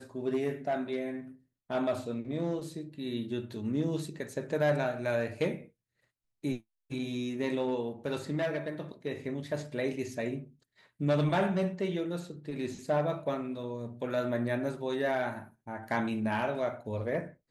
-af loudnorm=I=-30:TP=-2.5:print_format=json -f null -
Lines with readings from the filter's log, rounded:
"input_i" : "-33.4",
"input_tp" : "-15.8",
"input_lra" : "2.6",
"input_thresh" : "-43.7",